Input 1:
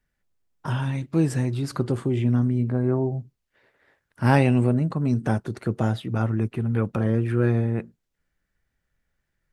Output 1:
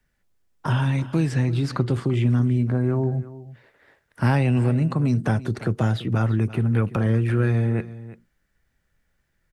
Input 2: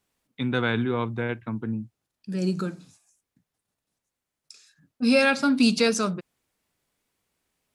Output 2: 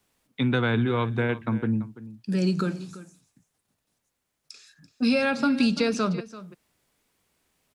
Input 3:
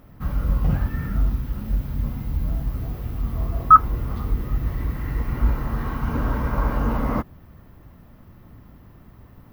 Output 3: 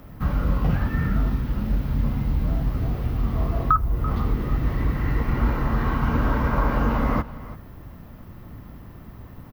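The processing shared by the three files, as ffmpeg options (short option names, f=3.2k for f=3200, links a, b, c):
-filter_complex "[0:a]acrossover=split=140|1400|5400[a][b][c][d];[a]acompressor=threshold=-26dB:ratio=4[e];[b]acompressor=threshold=-29dB:ratio=4[f];[c]acompressor=threshold=-37dB:ratio=4[g];[d]acompressor=threshold=-59dB:ratio=4[h];[e][f][g][h]amix=inputs=4:normalize=0,aecho=1:1:337:0.15,volume=5.5dB"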